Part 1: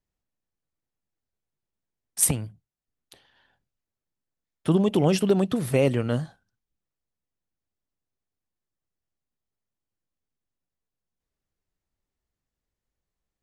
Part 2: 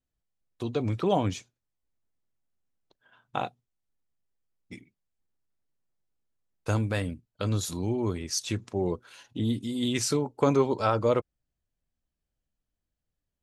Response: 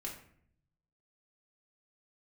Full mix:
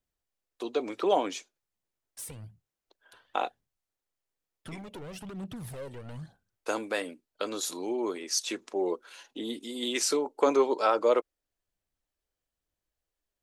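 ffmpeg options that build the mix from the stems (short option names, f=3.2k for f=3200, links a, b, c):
-filter_complex "[0:a]acompressor=threshold=-24dB:ratio=10,asoftclip=type=hard:threshold=-30.5dB,aphaser=in_gain=1:out_gain=1:delay=2.3:decay=0.49:speed=1.1:type=triangular,volume=-9dB[a];[1:a]highpass=f=320:w=0.5412,highpass=f=320:w=1.3066,acontrast=46,volume=-4.5dB[b];[a][b]amix=inputs=2:normalize=0"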